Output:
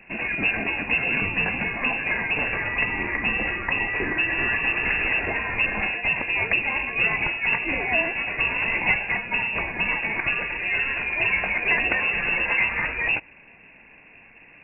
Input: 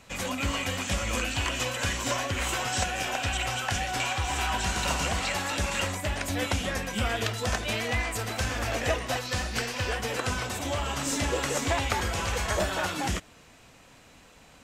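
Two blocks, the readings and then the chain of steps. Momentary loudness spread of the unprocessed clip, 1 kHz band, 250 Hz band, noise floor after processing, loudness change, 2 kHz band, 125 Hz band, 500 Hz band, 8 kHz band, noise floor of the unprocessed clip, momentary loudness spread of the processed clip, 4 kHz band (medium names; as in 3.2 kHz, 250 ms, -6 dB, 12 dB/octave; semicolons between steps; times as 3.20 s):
3 LU, -0.5 dB, +0.5 dB, -50 dBFS, +6.5 dB, +10.5 dB, -5.5 dB, -1.5 dB, under -40 dB, -54 dBFS, 3 LU, no reading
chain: peaking EQ 1.4 kHz -14.5 dB 0.24 oct; frequency inversion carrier 2.7 kHz; trim +5.5 dB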